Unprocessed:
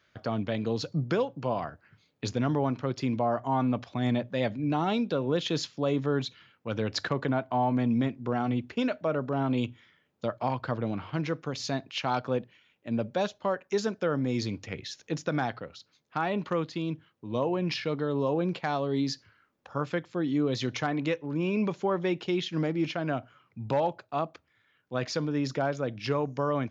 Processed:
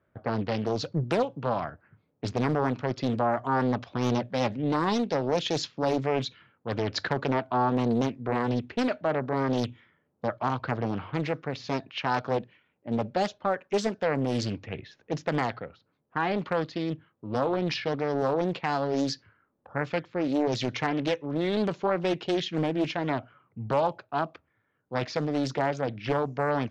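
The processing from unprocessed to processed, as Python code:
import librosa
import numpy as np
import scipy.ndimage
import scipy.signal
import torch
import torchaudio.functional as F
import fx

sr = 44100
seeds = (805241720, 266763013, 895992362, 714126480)

y = fx.env_lowpass(x, sr, base_hz=850.0, full_db=-23.5)
y = fx.doppler_dist(y, sr, depth_ms=0.79)
y = y * 10.0 ** (2.0 / 20.0)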